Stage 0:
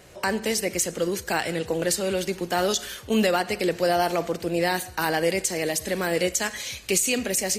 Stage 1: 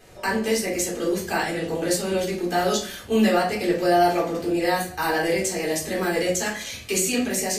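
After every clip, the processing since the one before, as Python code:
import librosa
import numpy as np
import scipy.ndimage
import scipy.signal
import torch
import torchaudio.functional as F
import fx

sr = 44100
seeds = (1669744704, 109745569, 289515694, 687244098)

y = fx.room_shoebox(x, sr, seeds[0], volume_m3=260.0, walls='furnished', distance_m=3.8)
y = y * 10.0 ** (-6.5 / 20.0)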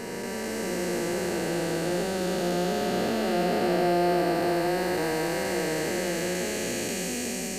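y = fx.spec_blur(x, sr, span_ms=1190.0)
y = fx.doubler(y, sr, ms=17.0, db=-11.5)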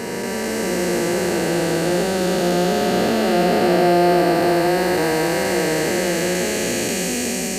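y = scipy.signal.sosfilt(scipy.signal.butter(2, 50.0, 'highpass', fs=sr, output='sos'), x)
y = y * 10.0 ** (8.5 / 20.0)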